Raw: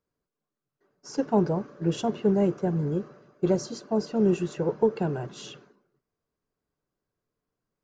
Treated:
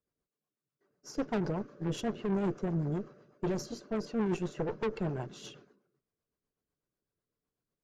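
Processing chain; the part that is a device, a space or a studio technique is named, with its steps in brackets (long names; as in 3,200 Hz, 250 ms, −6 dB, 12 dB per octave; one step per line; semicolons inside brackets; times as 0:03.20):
overdriven rotary cabinet (tube saturation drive 27 dB, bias 0.75; rotating-speaker cabinet horn 8 Hz)
level +1 dB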